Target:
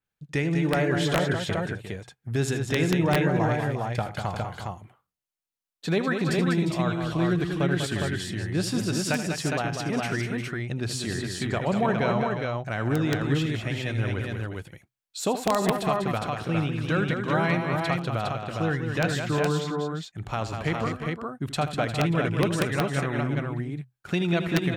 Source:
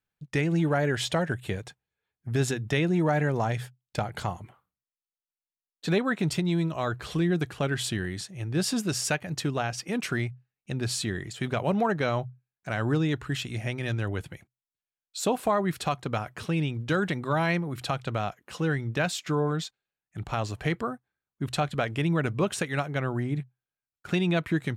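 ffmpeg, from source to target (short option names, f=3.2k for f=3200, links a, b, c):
-af "aecho=1:1:79|196|353|410:0.251|0.473|0.282|0.668,aeval=exprs='(mod(4.22*val(0)+1,2)-1)/4.22':c=same,adynamicequalizer=threshold=0.00501:dfrequency=4300:dqfactor=0.7:tfrequency=4300:tqfactor=0.7:attack=5:release=100:ratio=0.375:range=2.5:mode=cutabove:tftype=highshelf"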